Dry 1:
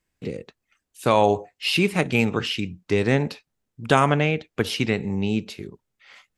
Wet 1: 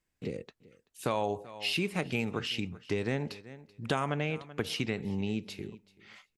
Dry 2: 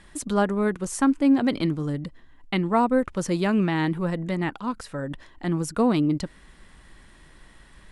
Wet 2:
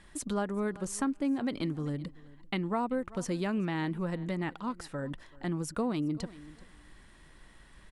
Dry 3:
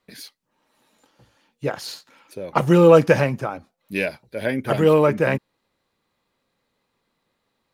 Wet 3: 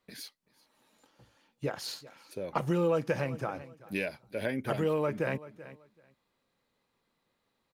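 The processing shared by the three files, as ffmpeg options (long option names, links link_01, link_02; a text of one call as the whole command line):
ffmpeg -i in.wav -filter_complex "[0:a]asplit=2[link_01][link_02];[link_02]aecho=0:1:383|766:0.0708|0.0113[link_03];[link_01][link_03]amix=inputs=2:normalize=0,acompressor=threshold=-25dB:ratio=2.5,volume=-5dB" out.wav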